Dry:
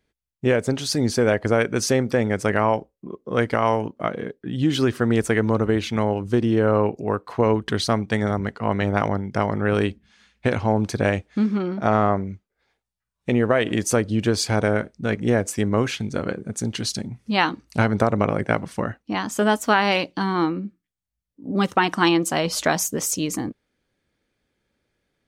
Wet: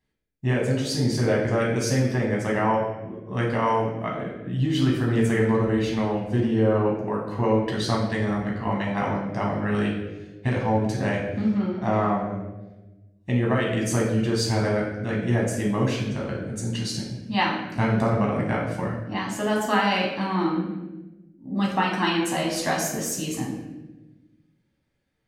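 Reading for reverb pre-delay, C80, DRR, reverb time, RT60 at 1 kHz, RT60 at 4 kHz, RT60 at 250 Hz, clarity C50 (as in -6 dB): 9 ms, 6.0 dB, -3.0 dB, 1.1 s, 0.90 s, 0.80 s, 1.7 s, 3.5 dB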